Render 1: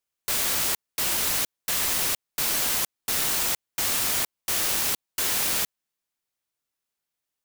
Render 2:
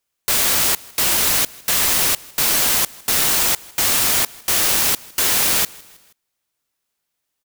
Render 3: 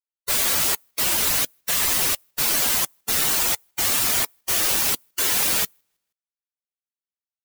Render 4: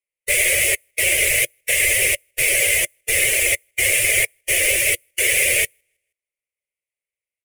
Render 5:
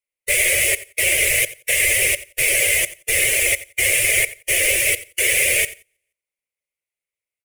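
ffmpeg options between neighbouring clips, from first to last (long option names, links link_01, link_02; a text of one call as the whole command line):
ffmpeg -i in.wav -af "aecho=1:1:159|318|477:0.0631|0.0322|0.0164,volume=8dB" out.wav
ffmpeg -i in.wav -af "afftdn=noise_reduction=27:noise_floor=-25,volume=-1.5dB" out.wav
ffmpeg -i in.wav -af "firequalizer=gain_entry='entry(110,0);entry(250,-30);entry(350,-2);entry(570,7);entry(850,-25);entry(1400,-18);entry(2100,12);entry(4000,-13);entry(9800,3);entry(15000,-13)':delay=0.05:min_phase=1,volume=5.5dB" out.wav
ffmpeg -i in.wav -af "aecho=1:1:88|176:0.141|0.0254" out.wav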